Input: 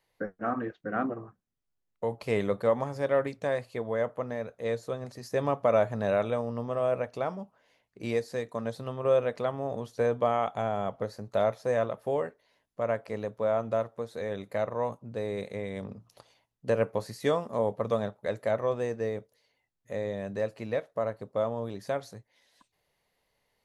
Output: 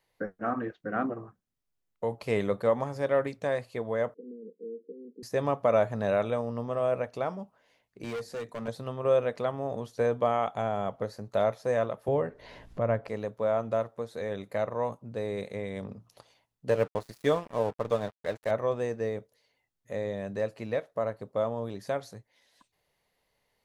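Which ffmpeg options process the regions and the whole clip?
-filter_complex "[0:a]asettb=1/sr,asplit=3[s0][s1][s2];[s0]atrim=end=4.144[s3];[s1]atrim=start=4.14:end=5.23,asetpts=PTS-STARTPTS,afade=t=in:d=0.004:c=qsin,afade=t=out:st=1.086:d=0.004:c=qsin,acompressor=threshold=0.02:ratio=3:attack=3.2:release=140:knee=1:detection=peak,asoftclip=type=hard:threshold=0.0188,asuperpass=centerf=300:order=20:qfactor=1[s4];[s2]atrim=start=5.226[s5];[s3][s4]acrossfade=d=0.004:c1=hsin:c2=qsin[s6];[s6][s5]acrossfade=d=0.004:c1=qsin:c2=hsin,asettb=1/sr,asplit=3[s7][s8][s9];[s7]atrim=end=8.044[s10];[s8]atrim=start=8.04:end=8.68,asetpts=PTS-STARTPTS,afade=t=in:d=0.004:c=qsin,afade=t=out:st=0.636:d=0.004:c=qsin,highpass=f=93:w=0.5412,highpass=f=93:w=1.3066,volume=39.8,asoftclip=hard,volume=0.0251,bandreject=f=50:t=h:w=6,bandreject=f=100:t=h:w=6,bandreject=f=150:t=h:w=6,bandreject=f=200:t=h:w=6,bandreject=f=250:t=h:w=6[s11];[s9]atrim=start=8.676[s12];[s10][s11]acrossfade=d=0.004:c1=hsin:c2=qsin[s13];[s13][s12]acrossfade=d=0.004:c1=qsin:c2=hsin,asettb=1/sr,asplit=3[s14][s15][s16];[s14]atrim=end=12.084[s17];[s15]atrim=start=12.08:end=13.08,asetpts=PTS-STARTPTS,afade=t=in:d=0.004:c=qsin,afade=t=out:st=0.996:d=0.004:c=qsin,aemphasis=mode=reproduction:type=bsi,acompressor=mode=upward:threshold=0.0355:ratio=2.5:attack=3.2:release=140:knee=2.83:detection=peak[s18];[s16]atrim=start=13.076[s19];[s17][s18]acrossfade=d=0.004:c1=hsin:c2=qsin[s20];[s20][s19]acrossfade=d=0.004:c1=qsin:c2=hsin,asettb=1/sr,asplit=3[s21][s22][s23];[s21]atrim=end=16.694[s24];[s22]atrim=start=16.69:end=18.51,asetpts=PTS-STARTPTS,afade=t=in:d=0.004:c=qsin,afade=t=out:st=1.816:d=0.004:c=qsin,aecho=1:1:6.6:0.3,atrim=end_sample=80262,aeval=exprs='sgn(val(0))*max(abs(val(0))-0.0075,0)':c=same[s25];[s23]atrim=start=18.506[s26];[s24][s25]acrossfade=d=0.004:c1=hsin:c2=qsin[s27];[s27][s26]acrossfade=d=0.004:c1=qsin:c2=hsin"

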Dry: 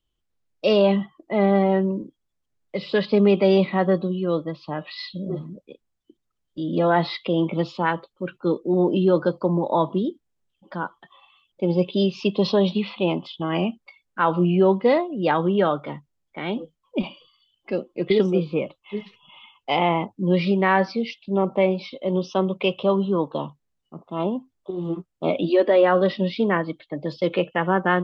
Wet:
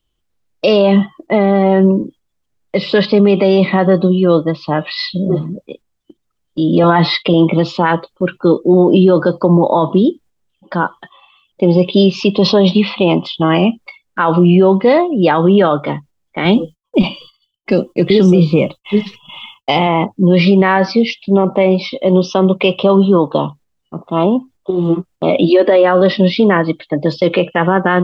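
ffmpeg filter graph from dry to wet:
-filter_complex "[0:a]asettb=1/sr,asplit=3[s0][s1][s2];[s0]atrim=end=6.834[s3];[s1]atrim=start=6.83:end=7.34,asetpts=PTS-STARTPTS,afade=t=in:d=0.004:c=qsin,afade=t=out:st=0.506:d=0.004:c=qsin,agate=range=0.178:threshold=0.00501:ratio=16:release=100:detection=peak,aecho=1:1:6.7:0.56,atrim=end_sample=22491[s4];[s2]atrim=start=7.336[s5];[s3][s4]acrossfade=d=0.004:c1=hsin:c2=qsin[s6];[s6][s5]acrossfade=d=0.004:c1=qsin:c2=hsin,asettb=1/sr,asplit=3[s7][s8][s9];[s7]atrim=end=16.454[s10];[s8]atrim=start=16.45:end=19.87,asetpts=PTS-STARTPTS,afade=t=in:d=0.004:c=qsin,afade=t=out:st=3.416:d=0.004:c=qsin,agate=range=0.0224:threshold=0.00141:ratio=3:release=100:detection=peak,bass=f=250:g=7,treble=f=4000:g=10[s11];[s9]atrim=start=19.866[s12];[s10][s11]acrossfade=d=0.004:c1=hsin:c2=qsin[s13];[s13][s12]acrossfade=d=0.004:c1=qsin:c2=hsin,agate=range=0.501:threshold=0.00316:ratio=16:detection=peak,alimiter=level_in=5.31:limit=0.891:release=50:level=0:latency=1,volume=0.891"

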